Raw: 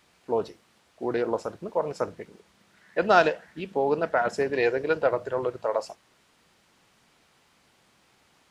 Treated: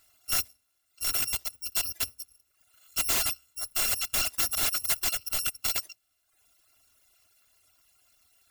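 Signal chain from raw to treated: FFT order left unsorted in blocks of 256 samples; notches 60/120/180/240 Hz; wrapped overs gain 19.5 dB; reverb removal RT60 0.86 s

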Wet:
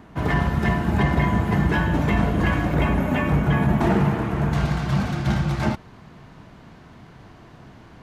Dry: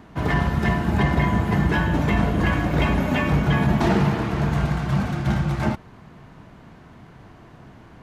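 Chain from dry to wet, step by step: bell 4600 Hz -2 dB 1.3 oct, from 2.74 s -8.5 dB, from 4.53 s +4 dB

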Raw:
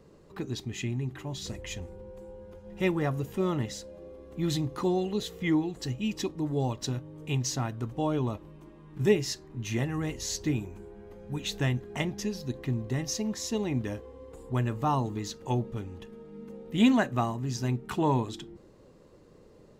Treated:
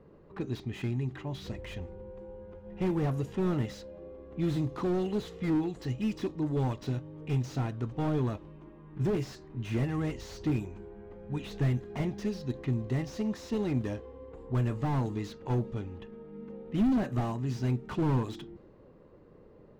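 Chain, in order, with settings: low-pass opened by the level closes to 1900 Hz, open at -24 dBFS; slew limiter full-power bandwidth 18 Hz

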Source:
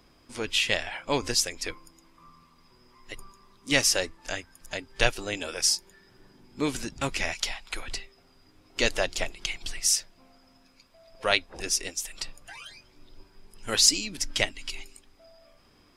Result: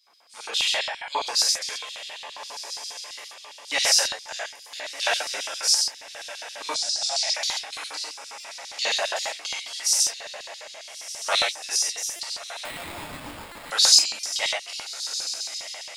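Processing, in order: diffused feedback echo 1.337 s, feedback 47%, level -11 dB; reverb, pre-delay 3 ms, DRR -7.5 dB; LFO high-pass square 7.4 Hz 830–4100 Hz; 6.74–7.34 EQ curve 180 Hz 0 dB, 410 Hz -17 dB, 640 Hz +5 dB, 1100 Hz -13 dB, 1800 Hz -6 dB, 2600 Hz -7 dB, 4400 Hz +10 dB, 9800 Hz -1 dB, 14000 Hz -24 dB; 12.65–13.71 sample-rate reducer 6000 Hz, jitter 0%; stuck buffer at 8.4/12.16/13.52/14.2, samples 128, times 10; gain -6.5 dB

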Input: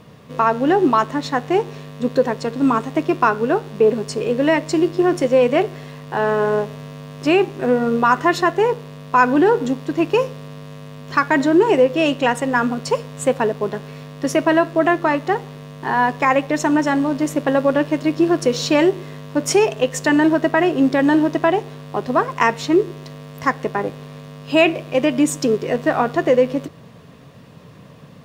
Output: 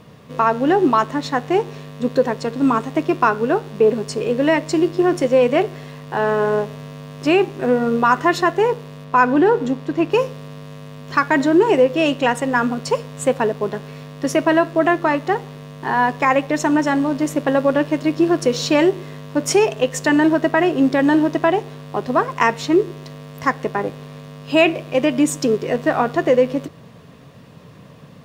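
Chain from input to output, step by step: 9.04–10.12 high shelf 4900 Hz -7.5 dB

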